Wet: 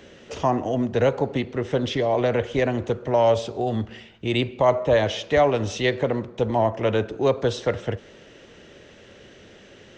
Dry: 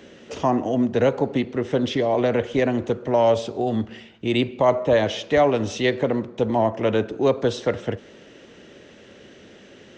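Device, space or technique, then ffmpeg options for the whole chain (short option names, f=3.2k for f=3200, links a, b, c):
low shelf boost with a cut just above: -af "lowshelf=f=88:g=7.5,equalizer=f=250:t=o:w=1.1:g=-5"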